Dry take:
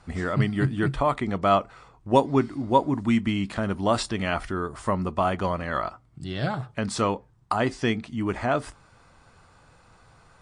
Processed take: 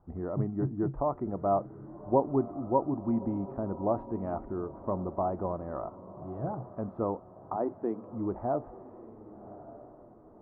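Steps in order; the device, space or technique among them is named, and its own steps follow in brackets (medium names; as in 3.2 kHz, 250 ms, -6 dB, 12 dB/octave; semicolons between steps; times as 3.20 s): 7.56–8.13 s: high-pass 240 Hz 24 dB/octave; dynamic bell 710 Hz, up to +4 dB, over -35 dBFS, Q 0.97; under water (low-pass 950 Hz 24 dB/octave; peaking EQ 340 Hz +5.5 dB 0.37 oct); echo that smears into a reverb 1142 ms, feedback 43%, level -15 dB; trim -8.5 dB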